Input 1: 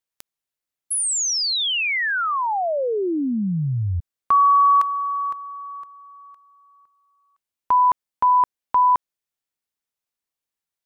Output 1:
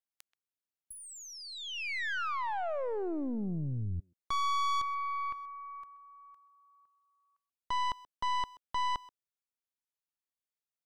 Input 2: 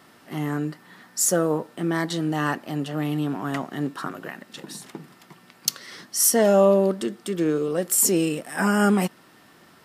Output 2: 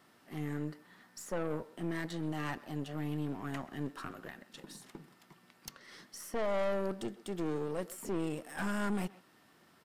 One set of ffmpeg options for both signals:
ffmpeg -i in.wav -filter_complex "[0:a]acrossover=split=2500[link_01][link_02];[link_02]acompressor=threshold=-37dB:ratio=6:attack=11:release=403:knee=1:detection=peak[link_03];[link_01][link_03]amix=inputs=2:normalize=0,aeval=exprs='(tanh(12.6*val(0)+0.65)-tanh(0.65))/12.6':channel_layout=same,asplit=2[link_04][link_05];[link_05]adelay=130,highpass=300,lowpass=3400,asoftclip=type=hard:threshold=-26.5dB,volume=-17dB[link_06];[link_04][link_06]amix=inputs=2:normalize=0,volume=-8dB" out.wav

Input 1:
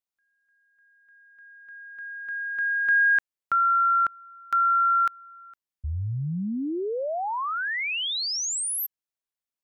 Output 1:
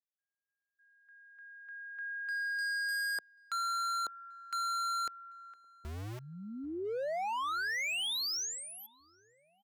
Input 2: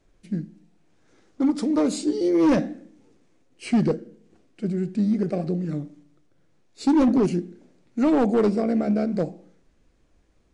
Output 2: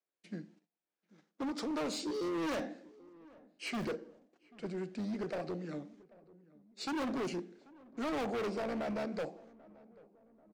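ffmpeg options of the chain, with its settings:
ffmpeg -i in.wav -filter_complex "[0:a]acrossover=split=450 7000:gain=0.251 1 0.2[link_01][link_02][link_03];[link_01][link_02][link_03]amix=inputs=3:normalize=0,acrossover=split=6500[link_04][link_05];[link_05]acompressor=threshold=-46dB:ratio=4:attack=1:release=60[link_06];[link_04][link_06]amix=inputs=2:normalize=0,agate=range=-22dB:threshold=-60dB:ratio=3:release=50:detection=rms,acrossover=split=140[link_07][link_08];[link_07]acrusher=bits=6:mix=0:aa=0.000001[link_09];[link_09][link_08]amix=inputs=2:normalize=0,asoftclip=type=hard:threshold=-31dB,asplit=2[link_10][link_11];[link_11]adelay=788,lowpass=frequency=1200:poles=1,volume=-22dB,asplit=2[link_12][link_13];[link_13]adelay=788,lowpass=frequency=1200:poles=1,volume=0.54,asplit=2[link_14][link_15];[link_15]adelay=788,lowpass=frequency=1200:poles=1,volume=0.54,asplit=2[link_16][link_17];[link_17]adelay=788,lowpass=frequency=1200:poles=1,volume=0.54[link_18];[link_12][link_14][link_16][link_18]amix=inputs=4:normalize=0[link_19];[link_10][link_19]amix=inputs=2:normalize=0,volume=-2.5dB" out.wav

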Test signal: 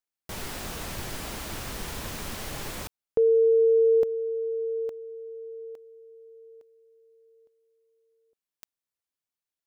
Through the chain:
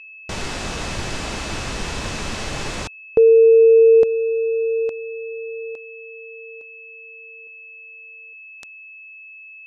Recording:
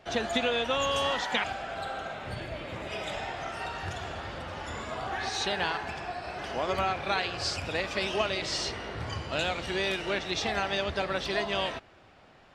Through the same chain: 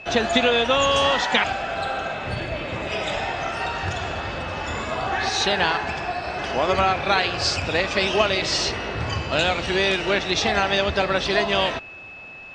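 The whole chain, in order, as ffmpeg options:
ffmpeg -i in.wav -af "aeval=exprs='val(0)+0.00447*sin(2*PI*2600*n/s)':channel_layout=same,lowpass=frequency=7800:width=0.5412,lowpass=frequency=7800:width=1.3066,volume=9dB" out.wav

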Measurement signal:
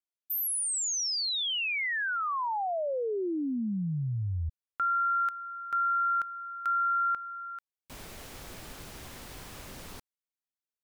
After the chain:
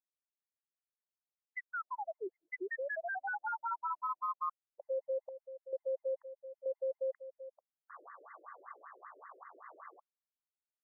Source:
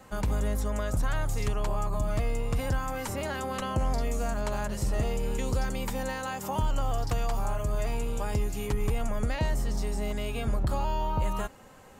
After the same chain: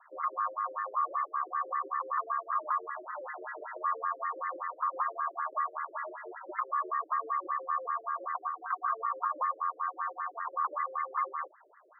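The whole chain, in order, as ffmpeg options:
ffmpeg -i in.wav -af "aeval=exprs='val(0)*sin(2*PI*1000*n/s)':channel_layout=same,afreqshift=150,afftfilt=real='re*between(b*sr/1024,420*pow(1500/420,0.5+0.5*sin(2*PI*5.2*pts/sr))/1.41,420*pow(1500/420,0.5+0.5*sin(2*PI*5.2*pts/sr))*1.41)':imag='im*between(b*sr/1024,420*pow(1500/420,0.5+0.5*sin(2*PI*5.2*pts/sr))/1.41,420*pow(1500/420,0.5+0.5*sin(2*PI*5.2*pts/sr))*1.41)':win_size=1024:overlap=0.75" out.wav

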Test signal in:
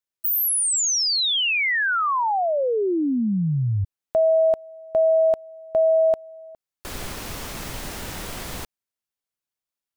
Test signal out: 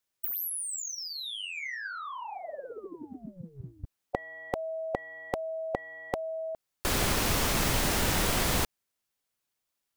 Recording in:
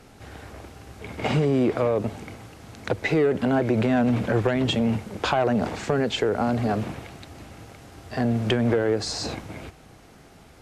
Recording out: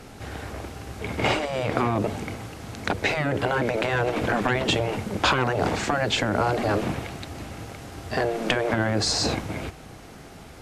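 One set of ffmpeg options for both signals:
ffmpeg -i in.wav -af "acontrast=57,afftfilt=real='re*lt(hypot(re,im),0.631)':imag='im*lt(hypot(re,im),0.631)':win_size=1024:overlap=0.75" out.wav

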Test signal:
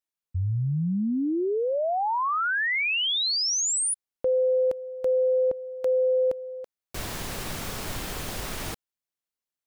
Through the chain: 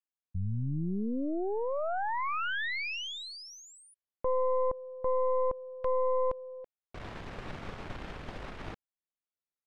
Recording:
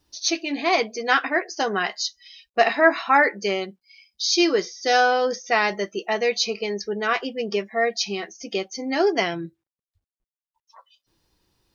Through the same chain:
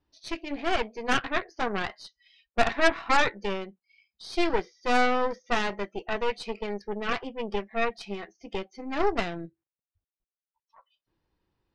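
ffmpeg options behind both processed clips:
ffmpeg -i in.wav -af "lowpass=2400,aeval=exprs='0.668*(cos(1*acos(clip(val(0)/0.668,-1,1)))-cos(1*PI/2))+0.0299*(cos(3*acos(clip(val(0)/0.668,-1,1)))-cos(3*PI/2))+0.133*(cos(4*acos(clip(val(0)/0.668,-1,1)))-cos(4*PI/2))+0.075*(cos(8*acos(clip(val(0)/0.668,-1,1)))-cos(8*PI/2))':channel_layout=same,volume=-6dB" out.wav

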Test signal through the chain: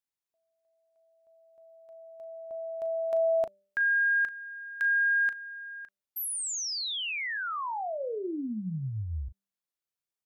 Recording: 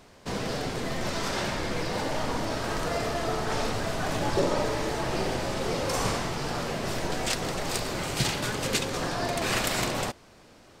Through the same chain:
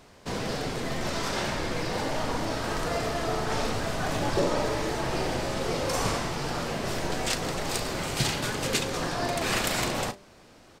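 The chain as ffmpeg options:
ffmpeg -i in.wav -filter_complex "[0:a]asplit=2[link_01][link_02];[link_02]adelay=37,volume=-13dB[link_03];[link_01][link_03]amix=inputs=2:normalize=0,bandreject=frequency=196.8:width_type=h:width=4,bandreject=frequency=393.6:width_type=h:width=4,bandreject=frequency=590.4:width_type=h:width=4" out.wav

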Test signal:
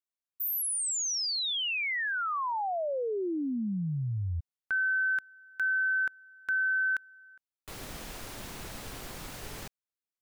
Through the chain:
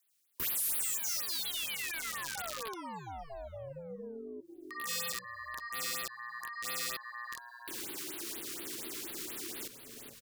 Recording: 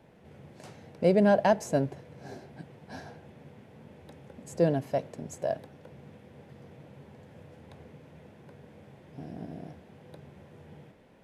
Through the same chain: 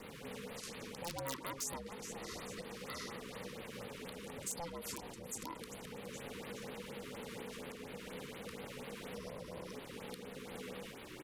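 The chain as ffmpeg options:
ffmpeg -i in.wav -filter_complex "[0:a]equalizer=frequency=390:width_type=o:width=2.9:gain=-13.5,asplit=2[link_01][link_02];[link_02]aeval=exprs='0.112*sin(PI/2*3.55*val(0)/0.112)':channel_layout=same,volume=-10.5dB[link_03];[link_01][link_03]amix=inputs=2:normalize=0,acompressor=threshold=-44dB:ratio=4:attack=1:release=73:knee=6:detection=rms,asplit=2[link_04][link_05];[link_05]asplit=5[link_06][link_07][link_08][link_09][link_10];[link_06]adelay=417,afreqshift=-120,volume=-11dB[link_11];[link_07]adelay=834,afreqshift=-240,volume=-17.9dB[link_12];[link_08]adelay=1251,afreqshift=-360,volume=-24.9dB[link_13];[link_09]adelay=1668,afreqshift=-480,volume=-31.8dB[link_14];[link_10]adelay=2085,afreqshift=-600,volume=-38.7dB[link_15];[link_11][link_12][link_13][link_14][link_15]amix=inputs=5:normalize=0[link_16];[link_04][link_16]amix=inputs=2:normalize=0,alimiter=level_in=17.5dB:limit=-24dB:level=0:latency=1:release=493,volume=-17.5dB,aeval=exprs='val(0)*sin(2*PI*340*n/s)':channel_layout=same,acrossover=split=430|4700[link_17][link_18][link_19];[link_17]acompressor=threshold=-57dB:ratio=6:attack=22:release=948:knee=2.83:detection=peak[link_20];[link_20][link_18][link_19]amix=inputs=3:normalize=0,aeval=exprs='(mod(141*val(0)+1,2)-1)/141':channel_layout=same,highshelf=frequency=3100:gain=6.5,afftfilt=real='re*(1-between(b*sr/1024,640*pow(7100/640,0.5+0.5*sin(2*PI*4.2*pts/sr))/1.41,640*pow(7100/640,0.5+0.5*sin(2*PI*4.2*pts/sr))*1.41))':imag='im*(1-between(b*sr/1024,640*pow(7100/640,0.5+0.5*sin(2*PI*4.2*pts/sr))/1.41,640*pow(7100/640,0.5+0.5*sin(2*PI*4.2*pts/sr))*1.41))':win_size=1024:overlap=0.75,volume=9.5dB" out.wav

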